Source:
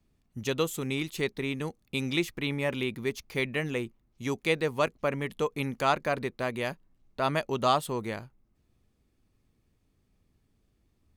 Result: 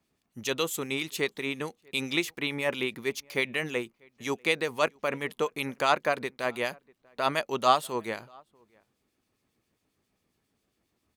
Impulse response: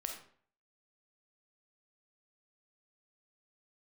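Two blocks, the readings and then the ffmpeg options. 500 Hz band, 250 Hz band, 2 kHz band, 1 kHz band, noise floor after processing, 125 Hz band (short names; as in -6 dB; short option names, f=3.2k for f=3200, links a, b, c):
0.0 dB, -2.5 dB, +3.0 dB, +2.0 dB, -78 dBFS, -7.5 dB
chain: -filter_complex "[0:a]highpass=f=460:p=1,asplit=2[a][b];[b]adelay=641.4,volume=-28dB,highshelf=f=4k:g=-14.4[c];[a][c]amix=inputs=2:normalize=0,acrossover=split=2300[d][e];[d]aeval=exprs='val(0)*(1-0.5/2+0.5/2*cos(2*PI*7.4*n/s))':c=same[f];[e]aeval=exprs='val(0)*(1-0.5/2-0.5/2*cos(2*PI*7.4*n/s))':c=same[g];[f][g]amix=inputs=2:normalize=0,volume=5.5dB"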